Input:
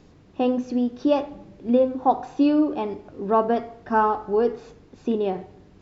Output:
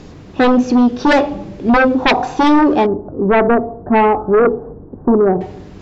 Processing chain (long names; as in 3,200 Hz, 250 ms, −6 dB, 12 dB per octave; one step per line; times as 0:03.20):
0:02.86–0:05.41: Gaussian smoothing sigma 9.1 samples
sine wavefolder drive 12 dB, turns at −7 dBFS